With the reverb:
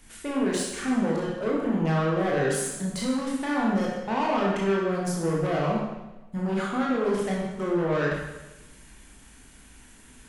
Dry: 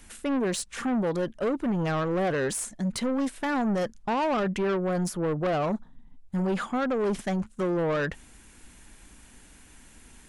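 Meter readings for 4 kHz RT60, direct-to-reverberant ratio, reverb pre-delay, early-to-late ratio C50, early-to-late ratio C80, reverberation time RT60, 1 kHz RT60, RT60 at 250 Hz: 1.0 s, -4.0 dB, 19 ms, -0.5 dB, 3.0 dB, 1.0 s, 1.0 s, 1.0 s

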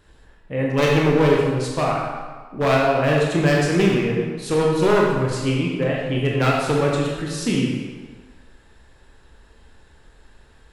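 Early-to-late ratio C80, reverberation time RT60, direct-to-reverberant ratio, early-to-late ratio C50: 2.5 dB, 1.5 s, -3.0 dB, 0.0 dB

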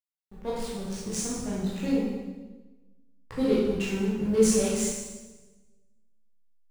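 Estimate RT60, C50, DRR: 1.2 s, -1.5 dB, -8.5 dB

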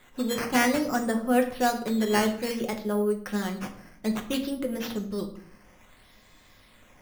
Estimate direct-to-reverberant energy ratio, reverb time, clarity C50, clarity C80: 2.5 dB, 0.55 s, 11.0 dB, 13.5 dB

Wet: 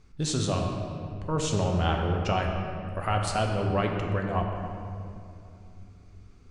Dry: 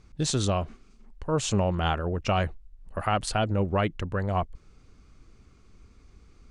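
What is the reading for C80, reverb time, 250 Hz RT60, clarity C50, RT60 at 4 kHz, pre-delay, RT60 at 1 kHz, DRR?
4.0 dB, 2.7 s, 3.5 s, 3.0 dB, 1.5 s, 7 ms, 2.5 s, 1.0 dB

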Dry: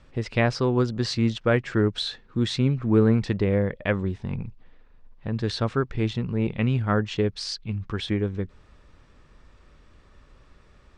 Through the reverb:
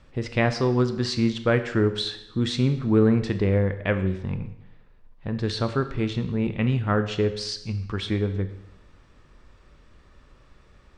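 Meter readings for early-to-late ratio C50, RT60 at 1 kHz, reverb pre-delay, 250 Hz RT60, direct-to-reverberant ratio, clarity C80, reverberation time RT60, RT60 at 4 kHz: 12.0 dB, 0.85 s, 21 ms, 0.85 s, 9.5 dB, 13.5 dB, 0.90 s, 0.80 s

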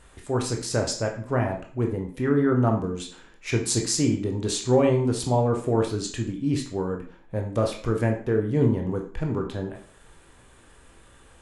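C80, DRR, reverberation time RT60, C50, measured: 12.0 dB, 1.0 dB, 0.45 s, 8.0 dB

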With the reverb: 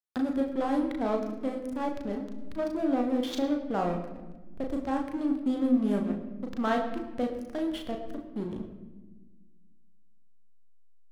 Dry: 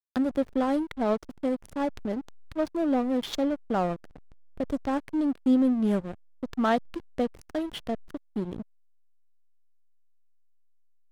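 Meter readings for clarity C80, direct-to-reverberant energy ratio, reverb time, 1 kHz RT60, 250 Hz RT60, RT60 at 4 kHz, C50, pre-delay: 9.5 dB, 1.5 dB, 1.2 s, 1.0 s, 2.1 s, 0.80 s, 8.0 dB, 34 ms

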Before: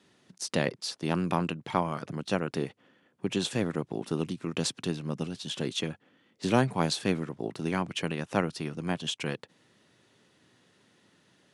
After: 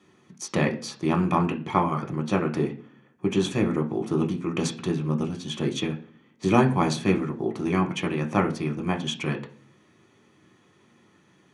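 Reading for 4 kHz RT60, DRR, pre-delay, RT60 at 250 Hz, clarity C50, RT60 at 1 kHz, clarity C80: 0.45 s, 2.0 dB, 3 ms, 0.65 s, 14.0 dB, 0.40 s, 18.5 dB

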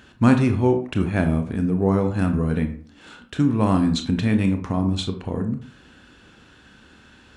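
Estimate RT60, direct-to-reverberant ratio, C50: 0.50 s, 6.0 dB, 10.0 dB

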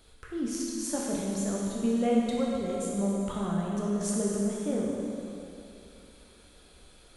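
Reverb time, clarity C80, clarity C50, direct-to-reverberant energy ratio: 2.9 s, 0.0 dB, -1.5 dB, -4.0 dB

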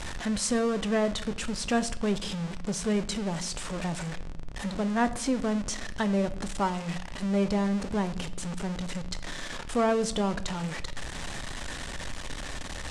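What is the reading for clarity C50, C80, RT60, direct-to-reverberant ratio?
16.0 dB, 19.0 dB, 0.75 s, 11.0 dB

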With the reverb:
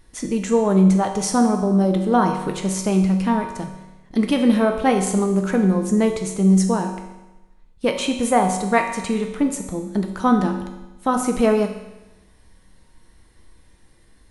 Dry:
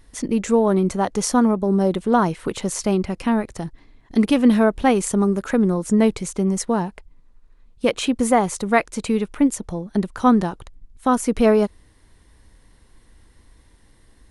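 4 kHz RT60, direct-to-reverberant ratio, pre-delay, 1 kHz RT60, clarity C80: 1.0 s, 3.5 dB, 5 ms, 1.0 s, 9.0 dB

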